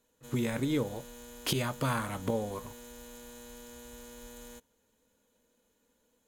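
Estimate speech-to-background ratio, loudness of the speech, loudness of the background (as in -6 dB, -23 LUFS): 15.0 dB, -33.5 LUFS, -48.5 LUFS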